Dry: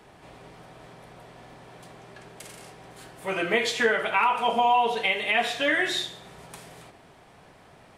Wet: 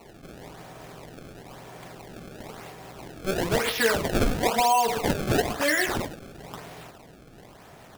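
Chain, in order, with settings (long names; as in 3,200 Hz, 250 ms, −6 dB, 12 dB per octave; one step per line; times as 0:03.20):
in parallel at −1 dB: downward compressor, threshold −34 dBFS, peak gain reduction 15.5 dB
on the sum: sample-and-hold swept by an LFO 26×, swing 160% 1 Hz
level −1.5 dB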